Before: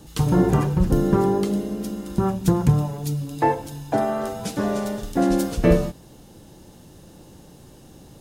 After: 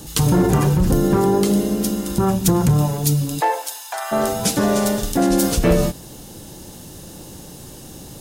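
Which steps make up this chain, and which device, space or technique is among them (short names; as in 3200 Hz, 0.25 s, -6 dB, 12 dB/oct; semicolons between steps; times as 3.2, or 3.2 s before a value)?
clipper into limiter (hard clip -10.5 dBFS, distortion -20 dB; limiter -16.5 dBFS, peak gain reduction 6 dB); 3.39–4.11 HPF 440 Hz -> 1100 Hz 24 dB/oct; high shelf 4200 Hz +9.5 dB; gain +7.5 dB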